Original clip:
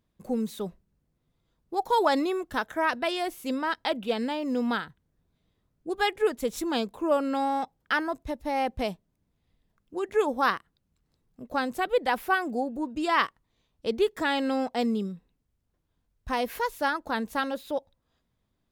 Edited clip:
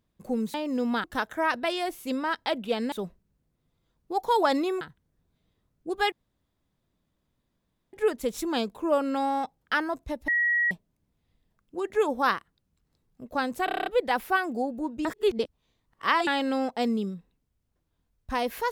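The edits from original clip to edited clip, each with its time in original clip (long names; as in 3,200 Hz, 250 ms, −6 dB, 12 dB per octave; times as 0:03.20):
0:00.54–0:02.43: swap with 0:04.31–0:04.81
0:06.12: splice in room tone 1.81 s
0:08.47–0:08.90: beep over 1,910 Hz −21 dBFS
0:11.84: stutter 0.03 s, 8 plays
0:13.03–0:14.25: reverse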